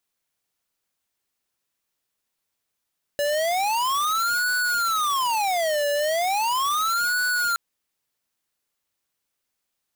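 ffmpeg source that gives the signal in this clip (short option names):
-f lavfi -i "aevalsrc='0.0708*(2*lt(mod((1029*t-451/(2*PI*0.37)*sin(2*PI*0.37*t)),1),0.5)-1)':d=4.37:s=44100"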